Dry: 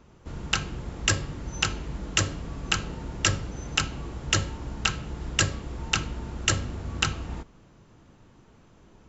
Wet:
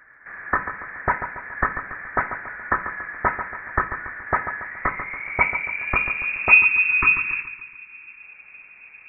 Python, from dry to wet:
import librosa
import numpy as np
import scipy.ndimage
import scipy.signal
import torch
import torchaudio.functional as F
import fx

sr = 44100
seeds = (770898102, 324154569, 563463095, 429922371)

p1 = fx.filter_sweep_highpass(x, sr, from_hz=840.0, to_hz=94.0, start_s=4.54, end_s=6.6, q=3.9)
p2 = fx.freq_invert(p1, sr, carrier_hz=2600)
p3 = p2 + fx.echo_feedback(p2, sr, ms=141, feedback_pct=47, wet_db=-10, dry=0)
p4 = fx.spec_erase(p3, sr, start_s=6.6, length_s=1.62, low_hz=410.0, high_hz=850.0)
y = p4 * librosa.db_to_amplitude(5.5)